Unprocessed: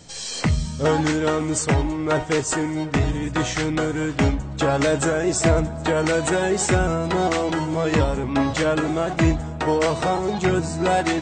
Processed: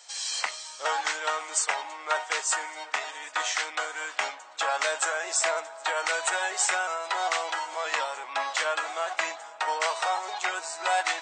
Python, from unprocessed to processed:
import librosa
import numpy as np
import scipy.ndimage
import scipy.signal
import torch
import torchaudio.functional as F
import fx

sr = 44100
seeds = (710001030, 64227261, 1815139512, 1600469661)

y = scipy.signal.sosfilt(scipy.signal.butter(4, 770.0, 'highpass', fs=sr, output='sos'), x)
y = y * librosa.db_to_amplitude(-1.0)